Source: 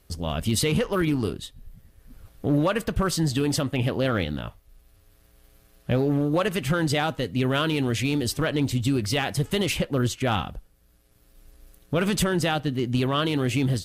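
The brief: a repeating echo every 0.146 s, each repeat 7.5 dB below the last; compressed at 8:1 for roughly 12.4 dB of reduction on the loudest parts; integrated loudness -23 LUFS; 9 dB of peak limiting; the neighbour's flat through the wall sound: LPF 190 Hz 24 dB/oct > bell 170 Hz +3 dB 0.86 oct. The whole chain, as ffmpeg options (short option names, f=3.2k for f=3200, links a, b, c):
-af "acompressor=threshold=-32dB:ratio=8,alimiter=level_in=8dB:limit=-24dB:level=0:latency=1,volume=-8dB,lowpass=f=190:w=0.5412,lowpass=f=190:w=1.3066,equalizer=f=170:t=o:w=0.86:g=3,aecho=1:1:146|292|438|584|730:0.422|0.177|0.0744|0.0312|0.0131,volume=21dB"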